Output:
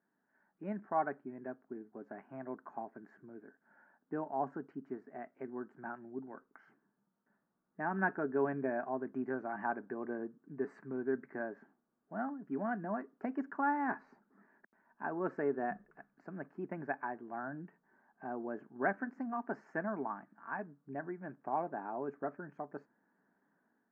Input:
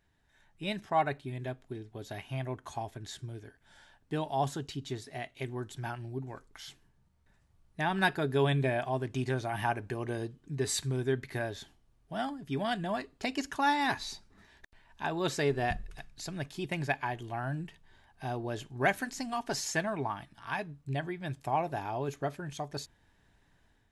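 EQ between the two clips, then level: elliptic band-pass 210–1500 Hz, stop band 40 dB; distance through air 94 m; peaking EQ 650 Hz -7 dB 2.7 oct; +2.5 dB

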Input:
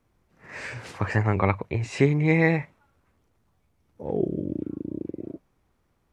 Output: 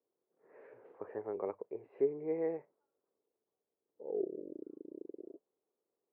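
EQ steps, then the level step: ladder band-pass 480 Hz, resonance 60%; distance through air 320 m; -3.5 dB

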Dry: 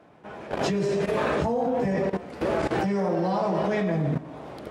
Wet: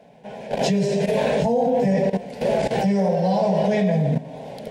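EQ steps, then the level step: static phaser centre 330 Hz, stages 6; +7.0 dB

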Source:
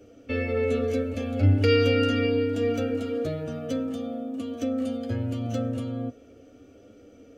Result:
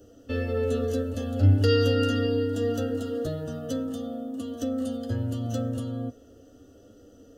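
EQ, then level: Butterworth band-stop 2.3 kHz, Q 2.9; bass shelf 76 Hz +8.5 dB; treble shelf 6.4 kHz +11 dB; -2.0 dB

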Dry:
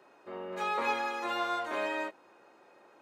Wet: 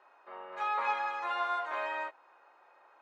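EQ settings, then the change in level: band-pass filter 910 Hz, Q 1.2; tilt shelf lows -8 dB, about 770 Hz; 0.0 dB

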